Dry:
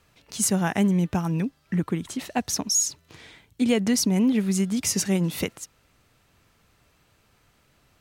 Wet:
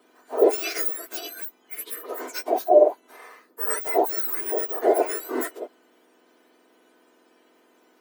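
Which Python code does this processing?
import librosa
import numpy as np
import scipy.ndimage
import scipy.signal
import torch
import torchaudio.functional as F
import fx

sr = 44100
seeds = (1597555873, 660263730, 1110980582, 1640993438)

y = fx.octave_mirror(x, sr, pivot_hz=2000.0)
y = fx.notch_comb(y, sr, f0_hz=280.0)
y = fx.hpss(y, sr, part='harmonic', gain_db=8)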